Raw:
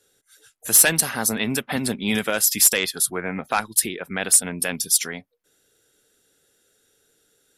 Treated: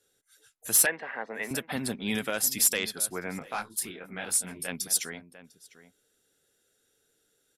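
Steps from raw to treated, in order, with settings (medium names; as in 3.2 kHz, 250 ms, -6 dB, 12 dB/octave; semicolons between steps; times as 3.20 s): 0.86–1.51 s: cabinet simulation 450–2200 Hz, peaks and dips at 490 Hz +5 dB, 1.3 kHz -6 dB, 1.9 kHz +7 dB; echo from a far wall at 120 m, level -15 dB; 3.39–4.68 s: detune thickener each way 37 cents; trim -7.5 dB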